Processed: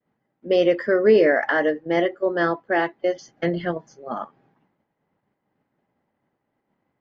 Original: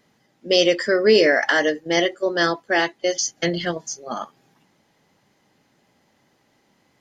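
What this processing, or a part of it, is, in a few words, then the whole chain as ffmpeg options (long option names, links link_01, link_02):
hearing-loss simulation: -af "lowpass=1600,agate=range=-33dB:threshold=-56dB:ratio=3:detection=peak"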